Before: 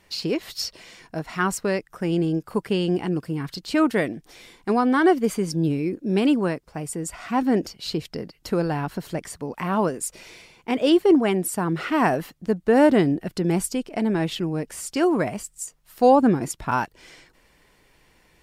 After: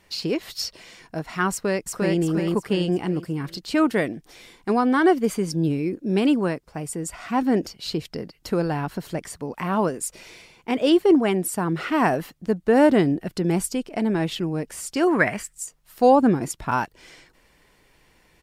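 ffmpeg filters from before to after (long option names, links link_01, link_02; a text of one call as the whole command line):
ffmpeg -i in.wav -filter_complex "[0:a]asplit=2[link_01][link_02];[link_02]afade=type=in:start_time=1.51:duration=0.01,afade=type=out:start_time=2.19:duration=0.01,aecho=0:1:350|700|1050|1400|1750:0.841395|0.336558|0.134623|0.0538493|0.0215397[link_03];[link_01][link_03]amix=inputs=2:normalize=0,asettb=1/sr,asplit=3[link_04][link_05][link_06];[link_04]atrim=end=15.074[link_07];[link_05]atrim=start=15.07:end=15.53,asetpts=PTS-STARTPTS,afade=type=in:duration=0.004:curve=qsin,afade=type=out:start_time=0.456:duration=0.004:curve=qsin,equalizer=frequency=1800:width=1.5:gain=14.5[link_08];[link_06]atrim=start=15.526[link_09];[link_07][link_08]acrossfade=duration=0.004:curve1=hsin:curve2=qsin[link_10];[link_10][link_09]acrossfade=duration=0.004:curve1=qsin:curve2=hsin" out.wav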